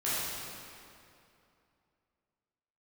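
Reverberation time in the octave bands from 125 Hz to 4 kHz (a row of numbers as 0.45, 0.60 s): 2.8, 2.8, 2.7, 2.6, 2.3, 2.0 s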